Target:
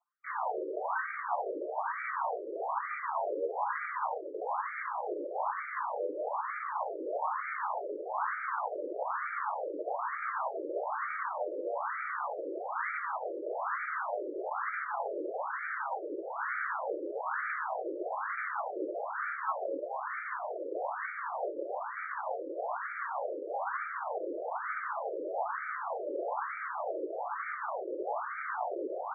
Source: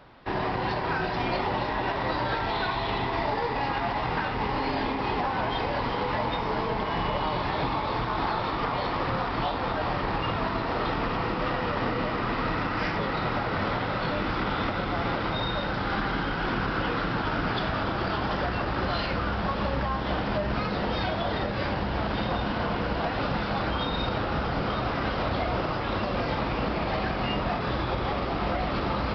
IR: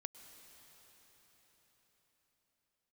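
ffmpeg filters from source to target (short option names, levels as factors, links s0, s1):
-filter_complex "[0:a]anlmdn=0.631,acrossover=split=2800[s0][s1];[s1]aexciter=amount=5.4:drive=1.5:freq=5200[s2];[s0][s2]amix=inputs=2:normalize=0,asplit=3[s3][s4][s5];[s4]asetrate=37084,aresample=44100,atempo=1.18921,volume=0.316[s6];[s5]asetrate=52444,aresample=44100,atempo=0.840896,volume=0.794[s7];[s3][s6][s7]amix=inputs=3:normalize=0,afftfilt=real='re*between(b*sr/1024,420*pow(1700/420,0.5+0.5*sin(2*PI*1.1*pts/sr))/1.41,420*pow(1700/420,0.5+0.5*sin(2*PI*1.1*pts/sr))*1.41)':imag='im*between(b*sr/1024,420*pow(1700/420,0.5+0.5*sin(2*PI*1.1*pts/sr))/1.41,420*pow(1700/420,0.5+0.5*sin(2*PI*1.1*pts/sr))*1.41)':win_size=1024:overlap=0.75,volume=0.668"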